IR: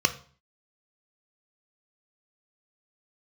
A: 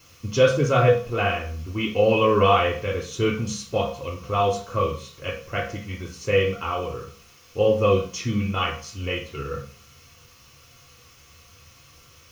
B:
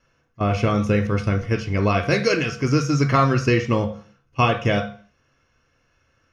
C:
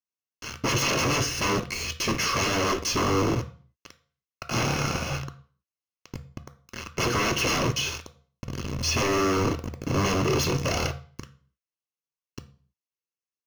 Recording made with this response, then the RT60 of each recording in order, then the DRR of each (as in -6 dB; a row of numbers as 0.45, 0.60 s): C; 0.45, 0.45, 0.45 s; -3.5, 3.5, 8.5 dB